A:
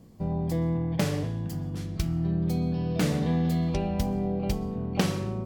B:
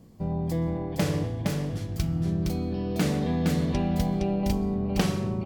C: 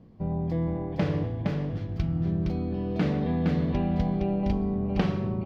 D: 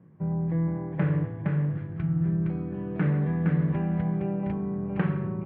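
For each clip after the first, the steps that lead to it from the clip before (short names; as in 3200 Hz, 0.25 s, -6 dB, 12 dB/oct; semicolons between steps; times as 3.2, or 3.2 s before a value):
echo 0.464 s -3.5 dB
air absorption 280 m
speaker cabinet 150–2200 Hz, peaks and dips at 150 Hz +10 dB, 240 Hz -10 dB, 470 Hz -4 dB, 700 Hz -8 dB, 1600 Hz +5 dB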